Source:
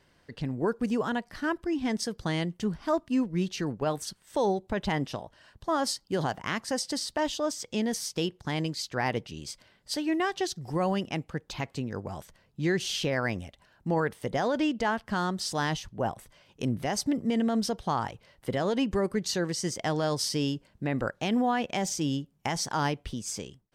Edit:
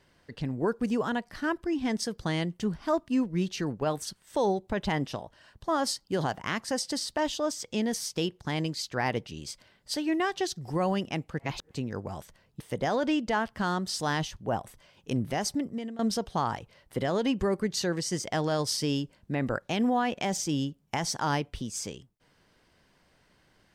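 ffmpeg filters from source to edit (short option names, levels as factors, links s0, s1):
-filter_complex "[0:a]asplit=5[s0][s1][s2][s3][s4];[s0]atrim=end=11.392[s5];[s1]atrim=start=11.388:end=11.712,asetpts=PTS-STARTPTS,areverse[s6];[s2]atrim=start=11.708:end=12.602[s7];[s3]atrim=start=14.118:end=17.51,asetpts=PTS-STARTPTS,afade=t=out:st=2.812:d=0.58:silence=0.105925[s8];[s4]atrim=start=17.51,asetpts=PTS-STARTPTS,afade=t=in:d=0.004:c=hsin:silence=0.105925[s9];[s5][s6]acrossfade=d=0.004:c1=hsin:c2=hsin[s10];[s10][s7]acrossfade=d=0.004:c1=hsin:c2=hsin[s11];[s8][s9]concat=n=2:v=0:a=1[s12];[s11][s12]acrossfade=d=0.004:c1=hsin:c2=hsin"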